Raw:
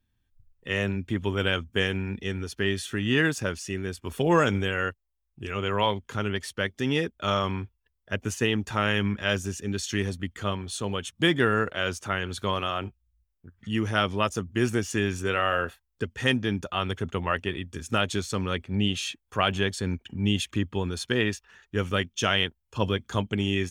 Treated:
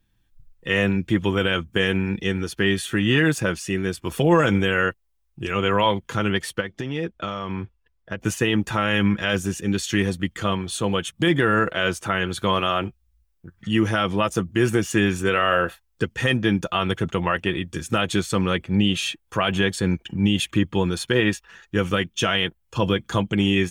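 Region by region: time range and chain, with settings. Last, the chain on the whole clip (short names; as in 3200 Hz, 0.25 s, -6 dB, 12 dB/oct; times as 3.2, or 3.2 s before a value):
6.6–8.21 LPF 2600 Hz 6 dB/oct + compressor 12:1, threshold -30 dBFS
whole clip: dynamic EQ 5500 Hz, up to -6 dB, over -47 dBFS, Q 1.4; comb 6 ms, depth 42%; limiter -15 dBFS; gain +7 dB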